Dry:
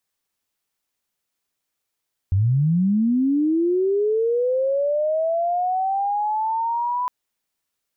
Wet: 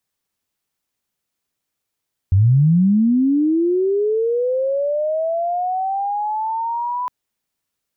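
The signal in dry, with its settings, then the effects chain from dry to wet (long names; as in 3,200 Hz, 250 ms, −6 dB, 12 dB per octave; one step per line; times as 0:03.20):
glide linear 89 Hz → 1,000 Hz −15 dBFS → −20.5 dBFS 4.76 s
parametric band 120 Hz +5.5 dB 2.9 octaves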